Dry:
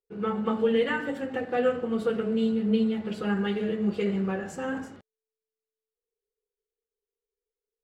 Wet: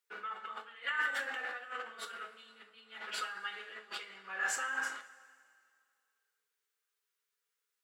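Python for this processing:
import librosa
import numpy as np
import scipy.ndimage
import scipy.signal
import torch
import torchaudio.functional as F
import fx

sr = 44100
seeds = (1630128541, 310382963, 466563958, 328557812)

y = fx.over_compress(x, sr, threshold_db=-36.0, ratio=-1.0)
y = fx.highpass_res(y, sr, hz=1400.0, q=1.8)
y = fx.rev_double_slope(y, sr, seeds[0], early_s=0.29, late_s=2.2, knee_db=-18, drr_db=5.0)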